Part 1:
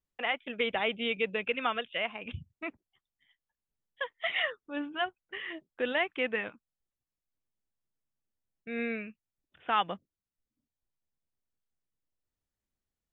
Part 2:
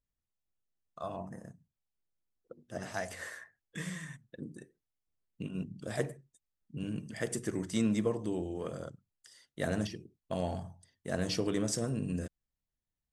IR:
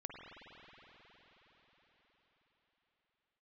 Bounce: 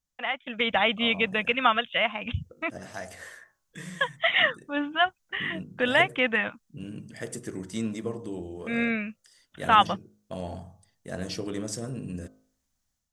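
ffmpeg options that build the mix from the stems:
-filter_complex "[0:a]equalizer=frequency=400:width_type=o:width=0.67:gain=-12,equalizer=frequency=2500:width_type=o:width=0.67:gain=-4,equalizer=frequency=6300:width_type=o:width=0.67:gain=8,volume=2.5dB[link_01];[1:a]bandreject=frequency=52.12:width_type=h:width=4,bandreject=frequency=104.24:width_type=h:width=4,bandreject=frequency=156.36:width_type=h:width=4,bandreject=frequency=208.48:width_type=h:width=4,bandreject=frequency=260.6:width_type=h:width=4,bandreject=frequency=312.72:width_type=h:width=4,bandreject=frequency=364.84:width_type=h:width=4,bandreject=frequency=416.96:width_type=h:width=4,bandreject=frequency=469.08:width_type=h:width=4,bandreject=frequency=521.2:width_type=h:width=4,bandreject=frequency=573.32:width_type=h:width=4,bandreject=frequency=625.44:width_type=h:width=4,bandreject=frequency=677.56:width_type=h:width=4,bandreject=frequency=729.68:width_type=h:width=4,bandreject=frequency=781.8:width_type=h:width=4,bandreject=frequency=833.92:width_type=h:width=4,bandreject=frequency=886.04:width_type=h:width=4,bandreject=frequency=938.16:width_type=h:width=4,bandreject=frequency=990.28:width_type=h:width=4,bandreject=frequency=1042.4:width_type=h:width=4,bandreject=frequency=1094.52:width_type=h:width=4,bandreject=frequency=1146.64:width_type=h:width=4,bandreject=frequency=1198.76:width_type=h:width=4,bandreject=frequency=1250.88:width_type=h:width=4,bandreject=frequency=1303:width_type=h:width=4,bandreject=frequency=1355.12:width_type=h:width=4,bandreject=frequency=1407.24:width_type=h:width=4,bandreject=frequency=1459.36:width_type=h:width=4,bandreject=frequency=1511.48:width_type=h:width=4,volume=-8.5dB[link_02];[link_01][link_02]amix=inputs=2:normalize=0,dynaudnorm=framelen=380:gausssize=3:maxgain=8dB"

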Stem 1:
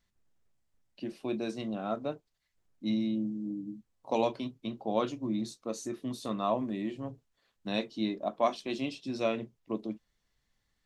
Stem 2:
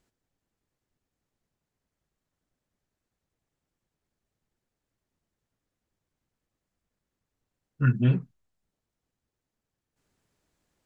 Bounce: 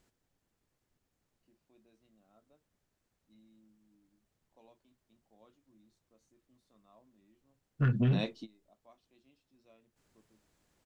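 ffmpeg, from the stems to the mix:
ffmpeg -i stem1.wav -i stem2.wav -filter_complex "[0:a]adelay=450,volume=-4dB[link_01];[1:a]alimiter=limit=-19dB:level=0:latency=1:release=157,asoftclip=type=tanh:threshold=-24dB,volume=2.5dB,asplit=2[link_02][link_03];[link_03]apad=whole_len=498566[link_04];[link_01][link_04]sidechaingate=range=-30dB:threshold=-60dB:ratio=16:detection=peak[link_05];[link_05][link_02]amix=inputs=2:normalize=0" out.wav

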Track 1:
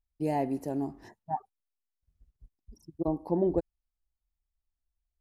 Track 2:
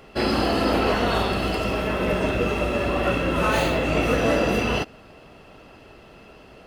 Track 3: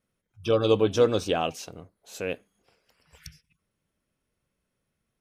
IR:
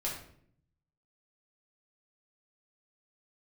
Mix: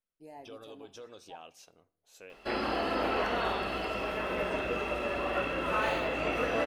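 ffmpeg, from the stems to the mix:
-filter_complex "[0:a]alimiter=limit=-20.5dB:level=0:latency=1:release=164,volume=-16.5dB,asplit=2[link_01][link_02];[link_02]volume=-13dB[link_03];[1:a]acrossover=split=3300[link_04][link_05];[link_05]acompressor=threshold=-46dB:ratio=4:attack=1:release=60[link_06];[link_04][link_06]amix=inputs=2:normalize=0,adelay=2300,volume=-5.5dB[link_07];[2:a]alimiter=limit=-19.5dB:level=0:latency=1:release=168,volume=-15.5dB,asplit=2[link_08][link_09];[link_09]volume=-19dB[link_10];[3:a]atrim=start_sample=2205[link_11];[link_03][link_10]amix=inputs=2:normalize=0[link_12];[link_12][link_11]afir=irnorm=-1:irlink=0[link_13];[link_01][link_07][link_08][link_13]amix=inputs=4:normalize=0,equalizer=frequency=100:width=0.38:gain=-13"

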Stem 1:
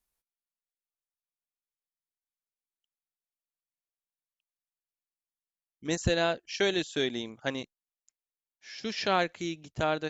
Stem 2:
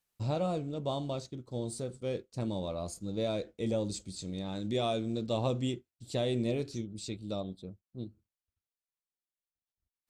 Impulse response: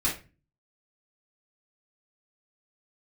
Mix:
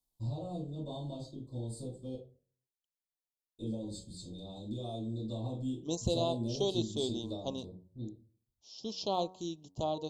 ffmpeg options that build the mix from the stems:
-filter_complex "[0:a]equalizer=frequency=1100:width_type=o:width=0.35:gain=3.5,volume=-4.5dB,asplit=2[link_01][link_02];[1:a]bandreject=frequency=5800:width=5.2,acompressor=threshold=-33dB:ratio=6,volume=-6.5dB,asplit=3[link_03][link_04][link_05];[link_03]atrim=end=2.15,asetpts=PTS-STARTPTS,afade=type=out:start_time=2.146:duration=0.004:curve=hsin[link_06];[link_04]atrim=start=2.15:end=3.57,asetpts=PTS-STARTPTS,volume=0[link_07];[link_05]atrim=start=3.57,asetpts=PTS-STARTPTS,afade=type=in:duration=0.004:curve=hsin[link_08];[link_06][link_07][link_08]concat=n=3:v=0:a=1,asplit=2[link_09][link_10];[link_10]volume=-6.5dB[link_11];[link_02]apad=whole_len=445261[link_12];[link_09][link_12]sidechaingate=range=-33dB:threshold=-50dB:ratio=16:detection=peak[link_13];[2:a]atrim=start_sample=2205[link_14];[link_11][link_14]afir=irnorm=-1:irlink=0[link_15];[link_01][link_13][link_15]amix=inputs=3:normalize=0,asuperstop=centerf=1800:order=8:qfactor=0.81,bandreject=frequency=92.87:width_type=h:width=4,bandreject=frequency=185.74:width_type=h:width=4,bandreject=frequency=278.61:width_type=h:width=4,bandreject=frequency=371.48:width_type=h:width=4,bandreject=frequency=464.35:width_type=h:width=4,bandreject=frequency=557.22:width_type=h:width=4,bandreject=frequency=650.09:width_type=h:width=4,bandreject=frequency=742.96:width_type=h:width=4,bandreject=frequency=835.83:width_type=h:width=4,bandreject=frequency=928.7:width_type=h:width=4,bandreject=frequency=1021.57:width_type=h:width=4,bandreject=frequency=1114.44:width_type=h:width=4,bandreject=frequency=1207.31:width_type=h:width=4,bandreject=frequency=1300.18:width_type=h:width=4"

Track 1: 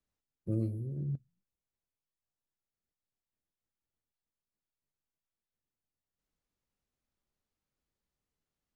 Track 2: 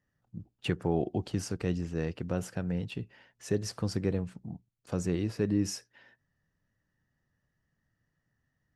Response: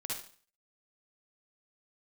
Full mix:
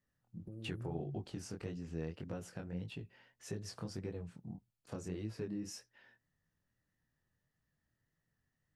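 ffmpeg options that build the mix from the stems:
-filter_complex "[0:a]acompressor=threshold=-36dB:ratio=6,alimiter=level_in=10.5dB:limit=-24dB:level=0:latency=1:release=240,volume=-10.5dB,volume=-4dB[link_01];[1:a]acompressor=threshold=-34dB:ratio=2.5,flanger=delay=18:depth=7.4:speed=1.7,volume=-3dB[link_02];[link_01][link_02]amix=inputs=2:normalize=0"

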